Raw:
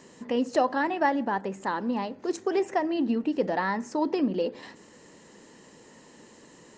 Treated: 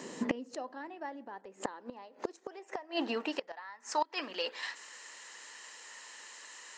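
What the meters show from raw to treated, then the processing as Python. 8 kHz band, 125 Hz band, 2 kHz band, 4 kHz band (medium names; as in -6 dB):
+1.0 dB, under -10 dB, -8.0 dB, +1.5 dB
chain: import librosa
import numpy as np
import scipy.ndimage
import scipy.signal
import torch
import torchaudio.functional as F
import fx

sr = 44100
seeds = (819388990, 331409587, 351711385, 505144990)

y = fx.filter_sweep_highpass(x, sr, from_hz=220.0, to_hz=1400.0, start_s=0.5, end_s=4.28, q=0.96)
y = fx.gate_flip(y, sr, shuts_db=-26.0, range_db=-25)
y = F.gain(torch.from_numpy(y), 7.0).numpy()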